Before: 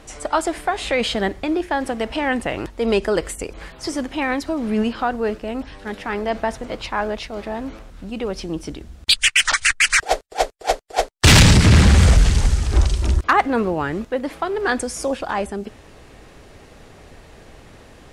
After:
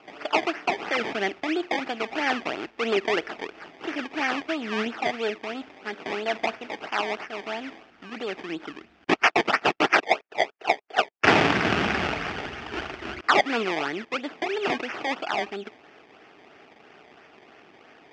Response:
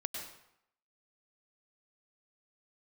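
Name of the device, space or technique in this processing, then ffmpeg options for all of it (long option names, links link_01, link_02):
circuit-bent sampling toy: -af "acrusher=samples=22:mix=1:aa=0.000001:lfo=1:lforange=22:lforate=3,highpass=400,equalizer=frequency=530:width_type=q:width=4:gain=-10,equalizer=frequency=1000:width_type=q:width=4:gain=-7,equalizer=frequency=2600:width_type=q:width=4:gain=3,equalizer=frequency=4000:width_type=q:width=4:gain=-9,lowpass=frequency=4500:width=0.5412,lowpass=frequency=4500:width=1.3066"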